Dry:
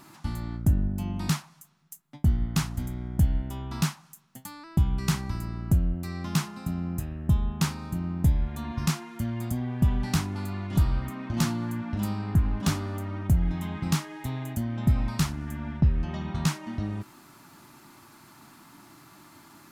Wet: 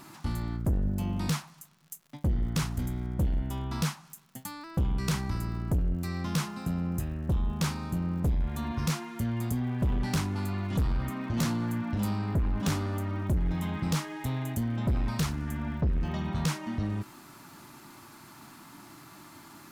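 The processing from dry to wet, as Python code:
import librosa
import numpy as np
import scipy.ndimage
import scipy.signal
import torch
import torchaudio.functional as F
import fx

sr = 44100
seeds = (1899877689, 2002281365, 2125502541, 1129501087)

y = fx.dmg_crackle(x, sr, seeds[0], per_s=130.0, level_db=-50.0)
y = 10.0 ** (-24.5 / 20.0) * np.tanh(y / 10.0 ** (-24.5 / 20.0))
y = y * librosa.db_to_amplitude(2.0)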